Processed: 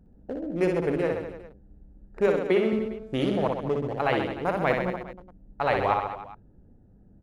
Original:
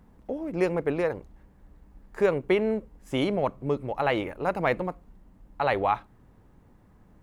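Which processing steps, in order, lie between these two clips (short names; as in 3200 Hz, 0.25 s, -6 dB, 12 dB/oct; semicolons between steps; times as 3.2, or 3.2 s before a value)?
Wiener smoothing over 41 samples; 2.27–2.73 elliptic high-pass 170 Hz; reverse bouncing-ball echo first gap 60 ms, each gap 1.15×, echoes 5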